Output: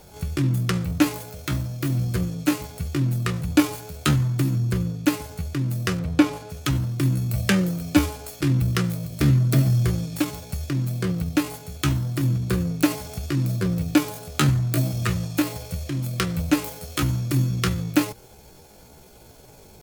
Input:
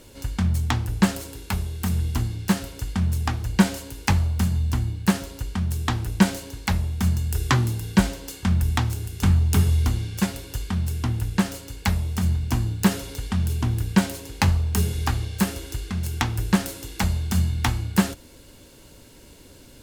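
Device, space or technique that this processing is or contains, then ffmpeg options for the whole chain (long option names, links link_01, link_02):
chipmunk voice: -filter_complex "[0:a]asettb=1/sr,asplit=3[link_01][link_02][link_03];[link_01]atrim=end=5.994[link_04];[link_02]atrim=start=5.99:end=6.51,asetpts=PTS-STARTPTS,afade=type=in:duration=0.004:curve=qsin,afade=type=out:start_time=0.516:duration=0.004:curve=qsin,aemphasis=mode=reproduction:type=75fm[link_05];[link_03]atrim=start=6.506[link_06];[link_04][link_05]acrossfade=duration=0.004:curve1=hsin:curve2=qsin[link_07];[link_07][link_06]acrossfade=duration=0.004:curve1=qsin:curve2=hsin,asetrate=68011,aresample=44100,atempo=0.64842"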